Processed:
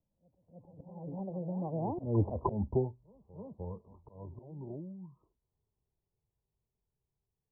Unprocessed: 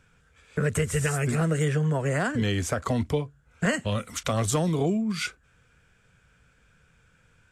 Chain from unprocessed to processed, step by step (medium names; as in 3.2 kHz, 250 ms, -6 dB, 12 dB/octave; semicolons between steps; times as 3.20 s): Doppler pass-by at 2.34 s, 54 m/s, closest 5.1 m; steep low-pass 1 kHz 96 dB/octave; peaking EQ 360 Hz +2 dB 0.29 oct; slow attack 217 ms; reverse echo 305 ms -15 dB; trim +8 dB